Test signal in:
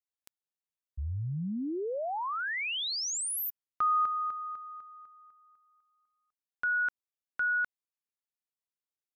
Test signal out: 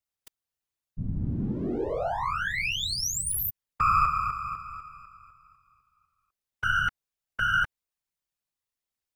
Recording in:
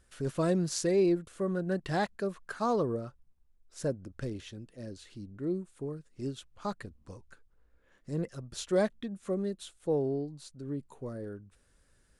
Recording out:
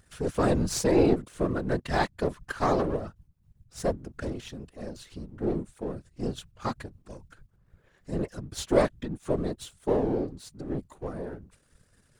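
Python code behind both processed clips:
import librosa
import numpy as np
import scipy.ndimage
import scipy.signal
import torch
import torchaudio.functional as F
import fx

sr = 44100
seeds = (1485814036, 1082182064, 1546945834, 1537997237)

y = np.where(x < 0.0, 10.0 ** (-7.0 / 20.0) * x, x)
y = fx.whisperise(y, sr, seeds[0])
y = F.gain(torch.from_numpy(y), 6.5).numpy()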